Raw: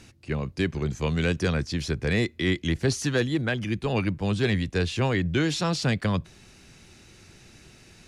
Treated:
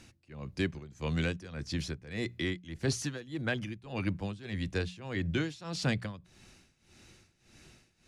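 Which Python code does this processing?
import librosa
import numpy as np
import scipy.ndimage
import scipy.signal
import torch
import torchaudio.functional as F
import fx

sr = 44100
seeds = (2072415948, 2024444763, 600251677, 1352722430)

y = fx.notch(x, sr, hz=420.0, q=12.0)
y = y * (1.0 - 0.87 / 2.0 + 0.87 / 2.0 * np.cos(2.0 * np.pi * 1.7 * (np.arange(len(y)) / sr)))
y = fx.hum_notches(y, sr, base_hz=60, count=3)
y = y * librosa.db_to_amplitude(-4.5)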